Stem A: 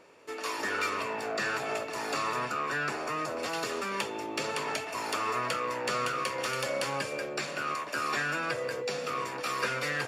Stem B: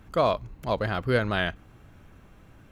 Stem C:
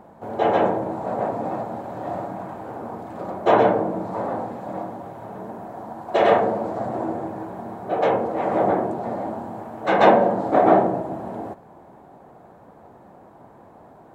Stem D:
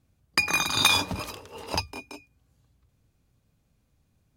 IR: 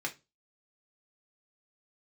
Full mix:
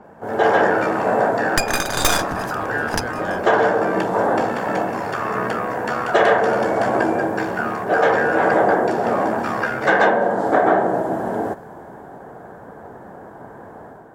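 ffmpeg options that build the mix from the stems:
-filter_complex "[0:a]tremolo=f=69:d=0.621,aemphasis=mode=reproduction:type=75kf,volume=2dB[a];[1:a]adelay=1900,volume=-13dB[b];[2:a]equalizer=f=440:w=5.5:g=5,acrossover=split=200|720[c][d][e];[c]acompressor=threshold=-43dB:ratio=4[f];[d]acompressor=threshold=-26dB:ratio=4[g];[e]acompressor=threshold=-25dB:ratio=4[h];[f][g][h]amix=inputs=3:normalize=0,adynamicequalizer=threshold=0.00447:dfrequency=2900:dqfactor=0.7:tfrequency=2900:tqfactor=0.7:attack=5:release=100:ratio=0.375:range=2.5:mode=boostabove:tftype=highshelf,volume=1.5dB[i];[3:a]aeval=exprs='0.631*(cos(1*acos(clip(val(0)/0.631,-1,1)))-cos(1*PI/2))+0.224*(cos(6*acos(clip(val(0)/0.631,-1,1)))-cos(6*PI/2))':c=same,adelay=1200,volume=-2.5dB[j];[a][b][i][j]amix=inputs=4:normalize=0,equalizer=f=1.6k:t=o:w=0.33:g=10,equalizer=f=2.5k:t=o:w=0.33:g=-6,equalizer=f=4k:t=o:w=0.33:g=-6,dynaudnorm=f=120:g=5:m=6.5dB"

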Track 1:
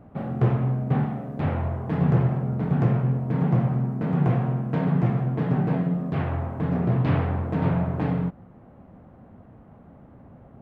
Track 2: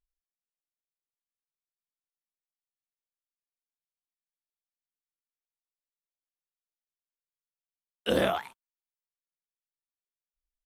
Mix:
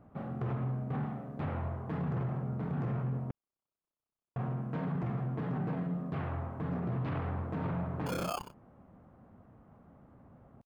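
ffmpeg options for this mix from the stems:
-filter_complex "[0:a]volume=-9.5dB,asplit=3[a][b][c];[a]atrim=end=3.31,asetpts=PTS-STARTPTS,afade=t=out:st=3.306:d=0.004:c=hsin[d];[b]atrim=start=3.31:end=4.36,asetpts=PTS-STARTPTS,volume=0[e];[c]atrim=start=4.36,asetpts=PTS-STARTPTS,afade=t=in:d=0.004:c=hsin[f];[d][e][f]concat=n=3:v=0:a=1[g];[1:a]tremolo=f=32:d=0.947,acrusher=samples=23:mix=1:aa=0.000001,volume=0dB[h];[g][h]amix=inputs=2:normalize=0,equalizer=f=1.2k:t=o:w=0.64:g=4.5,alimiter=level_in=3.5dB:limit=-24dB:level=0:latency=1:release=17,volume=-3.5dB"

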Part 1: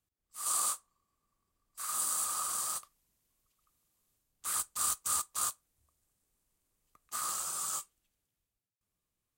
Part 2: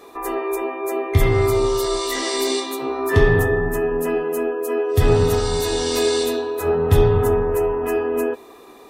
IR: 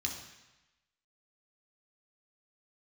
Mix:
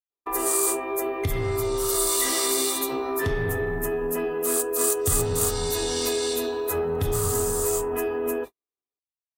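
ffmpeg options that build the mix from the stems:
-filter_complex "[0:a]aeval=exprs='val(0)+0.00112*(sin(2*PI*50*n/s)+sin(2*PI*2*50*n/s)/2+sin(2*PI*3*50*n/s)/3+sin(2*PI*4*50*n/s)/4+sin(2*PI*5*50*n/s)/5)':c=same,volume=0.5dB[a];[1:a]acompressor=threshold=-27dB:ratio=2.5,asoftclip=type=tanh:threshold=-18dB,adelay=100,volume=1dB[b];[a][b]amix=inputs=2:normalize=0,agate=range=-59dB:threshold=-32dB:ratio=16:detection=peak,equalizer=f=15k:w=0.31:g=10"

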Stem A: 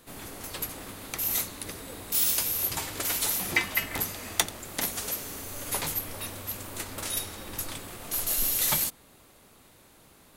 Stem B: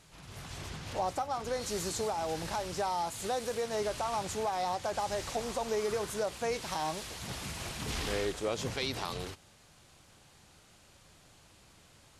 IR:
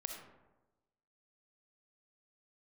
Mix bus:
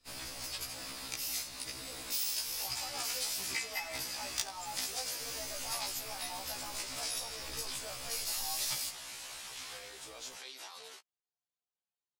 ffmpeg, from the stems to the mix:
-filter_complex "[0:a]equalizer=f=200:t=o:w=0.33:g=-8,equalizer=f=400:t=o:w=0.33:g=-9,equalizer=f=2.5k:t=o:w=0.33:g=4,equalizer=f=5k:t=o:w=0.33:g=11,equalizer=f=12.5k:t=o:w=0.33:g=-12,acompressor=threshold=-40dB:ratio=2.5,volume=-3dB,asplit=2[a][b];[b]volume=-10.5dB[c];[1:a]alimiter=level_in=5dB:limit=-24dB:level=0:latency=1,volume=-5dB,highpass=650,adelay=1650,volume=-5.5dB[d];[2:a]atrim=start_sample=2205[e];[c][e]afir=irnorm=-1:irlink=0[f];[a][d][f]amix=inputs=3:normalize=0,highshelf=f=2.6k:g=7,anlmdn=0.00251,afftfilt=real='re*1.73*eq(mod(b,3),0)':imag='im*1.73*eq(mod(b,3),0)':win_size=2048:overlap=0.75"

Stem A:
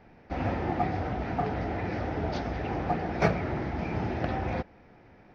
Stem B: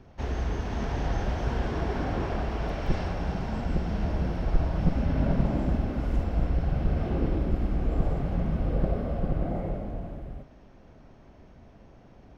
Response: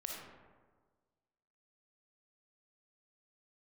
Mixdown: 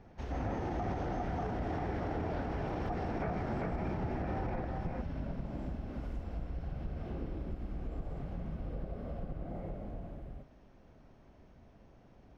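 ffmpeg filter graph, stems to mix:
-filter_complex "[0:a]lowpass=1.7k,volume=-5.5dB,asplit=2[a][b];[b]volume=-4.5dB[c];[1:a]acompressor=threshold=-30dB:ratio=3,volume=-7dB[d];[c]aecho=0:1:397:1[e];[a][d][e]amix=inputs=3:normalize=0,alimiter=level_in=3.5dB:limit=-24dB:level=0:latency=1:release=25,volume=-3.5dB"

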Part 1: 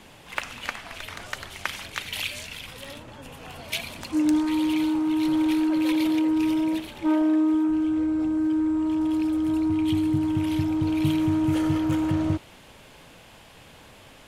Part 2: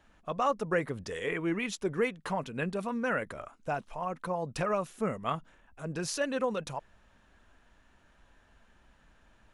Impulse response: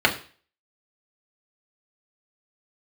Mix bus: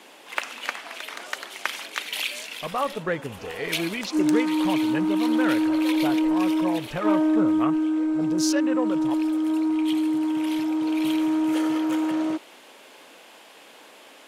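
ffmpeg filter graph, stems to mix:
-filter_complex "[0:a]highpass=f=280:w=0.5412,highpass=f=280:w=1.3066,volume=2dB[a];[1:a]equalizer=f=5.6k:w=1.1:g=8,afwtdn=0.0112,adelay=2350,volume=2dB[b];[a][b]amix=inputs=2:normalize=0"

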